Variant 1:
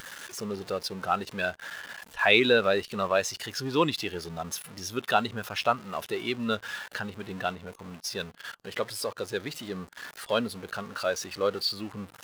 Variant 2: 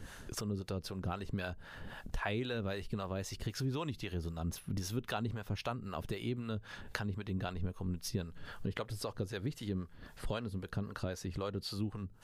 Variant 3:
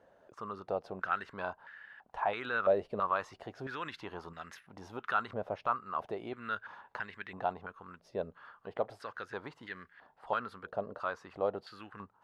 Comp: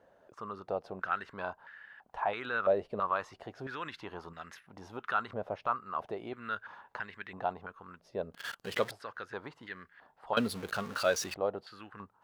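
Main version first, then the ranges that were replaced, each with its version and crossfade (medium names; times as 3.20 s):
3
8.34–8.91 s: from 1
10.37–11.34 s: from 1
not used: 2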